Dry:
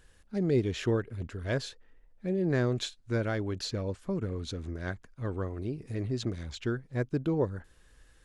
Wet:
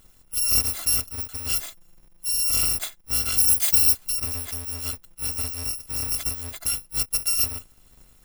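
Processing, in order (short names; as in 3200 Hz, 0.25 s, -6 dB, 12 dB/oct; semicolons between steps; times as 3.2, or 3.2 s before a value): FFT order left unsorted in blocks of 256 samples; 3.37–3.96 high shelf 5000 Hz -> 2900 Hz +11.5 dB; gain +5 dB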